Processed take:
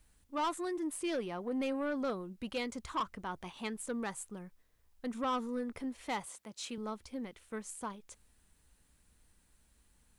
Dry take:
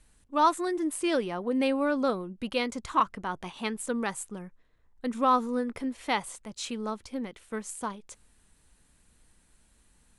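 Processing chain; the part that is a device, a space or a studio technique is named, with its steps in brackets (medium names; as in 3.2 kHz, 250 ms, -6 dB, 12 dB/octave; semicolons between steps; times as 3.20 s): 6.25–6.78 s: high-pass 170 Hz 12 dB/octave; open-reel tape (saturation -22.5 dBFS, distortion -11 dB; peaking EQ 67 Hz +4.5 dB; white noise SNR 42 dB); trim -6 dB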